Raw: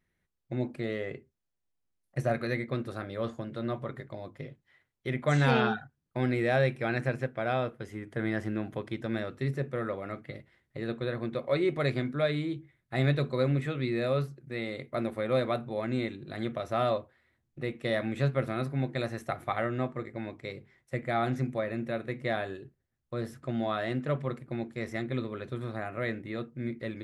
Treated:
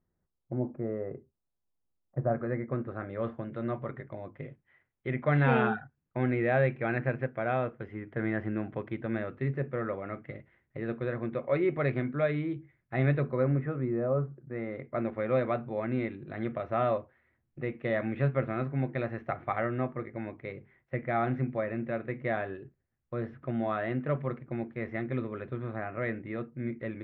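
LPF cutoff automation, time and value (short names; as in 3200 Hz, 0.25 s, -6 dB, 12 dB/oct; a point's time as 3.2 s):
LPF 24 dB/oct
2.19 s 1200 Hz
3.32 s 2500 Hz
13.04 s 2500 Hz
14.11 s 1200 Hz
15.13 s 2500 Hz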